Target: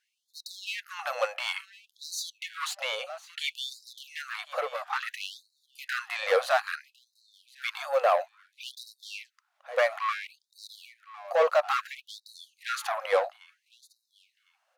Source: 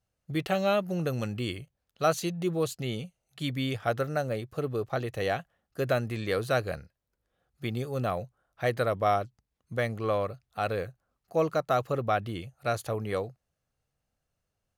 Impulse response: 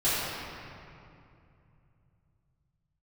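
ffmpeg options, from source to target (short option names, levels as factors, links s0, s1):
-filter_complex "[0:a]asplit=2[s0][s1];[s1]highpass=f=720:p=1,volume=15.8,asoftclip=type=tanh:threshold=0.224[s2];[s0][s2]amix=inputs=2:normalize=0,lowpass=f=1400:p=1,volume=0.501,aecho=1:1:1055|2110:0.112|0.0213,afftfilt=real='re*gte(b*sr/1024,470*pow(3800/470,0.5+0.5*sin(2*PI*0.59*pts/sr)))':imag='im*gte(b*sr/1024,470*pow(3800/470,0.5+0.5*sin(2*PI*0.59*pts/sr)))':win_size=1024:overlap=0.75,volume=1.19"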